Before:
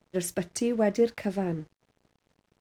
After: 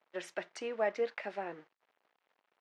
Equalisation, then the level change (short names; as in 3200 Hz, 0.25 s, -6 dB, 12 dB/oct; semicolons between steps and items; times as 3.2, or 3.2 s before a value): BPF 770–2700 Hz; 0.0 dB